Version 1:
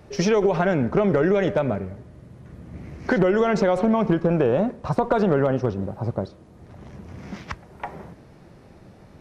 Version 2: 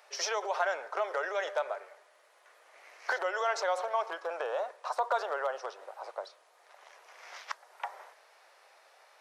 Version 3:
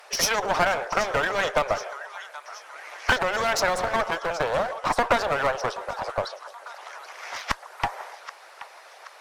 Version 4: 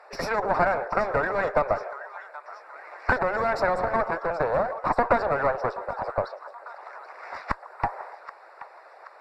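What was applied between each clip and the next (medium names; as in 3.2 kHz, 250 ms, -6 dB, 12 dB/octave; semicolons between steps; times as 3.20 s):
Bessel high-pass 1 kHz, order 8; dynamic bell 2.4 kHz, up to -8 dB, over -50 dBFS, Q 1.6
two-band feedback delay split 910 Hz, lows 147 ms, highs 777 ms, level -15 dB; one-sided clip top -39.5 dBFS; harmonic-percussive split percussive +8 dB; trim +7 dB
boxcar filter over 14 samples; trim +1.5 dB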